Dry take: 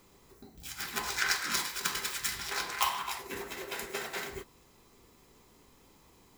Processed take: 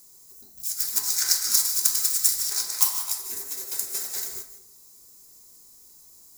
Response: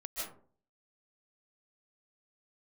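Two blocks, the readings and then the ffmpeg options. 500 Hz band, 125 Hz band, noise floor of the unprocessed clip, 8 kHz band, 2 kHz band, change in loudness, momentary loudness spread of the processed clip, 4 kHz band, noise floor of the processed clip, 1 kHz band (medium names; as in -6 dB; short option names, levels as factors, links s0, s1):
-8.0 dB, no reading, -62 dBFS, +14.5 dB, -8.5 dB, +10.5 dB, 11 LU, +6.5 dB, -52 dBFS, -8.5 dB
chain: -filter_complex "[0:a]aexciter=amount=9.9:drive=7.4:freq=4500,asplit=2[s0][s1];[1:a]atrim=start_sample=2205[s2];[s1][s2]afir=irnorm=-1:irlink=0,volume=0.447[s3];[s0][s3]amix=inputs=2:normalize=0,volume=0.299"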